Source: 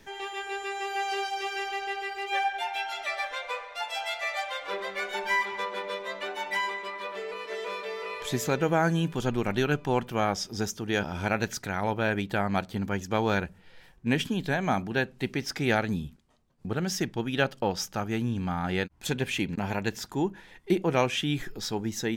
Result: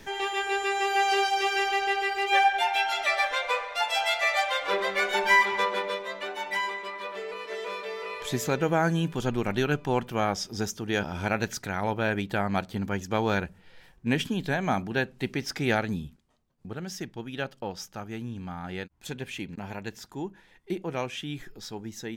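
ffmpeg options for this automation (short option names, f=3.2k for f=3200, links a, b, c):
-af "volume=6.5dB,afade=t=out:st=5.66:d=0.41:silence=0.473151,afade=t=out:st=15.68:d=1.08:silence=0.446684"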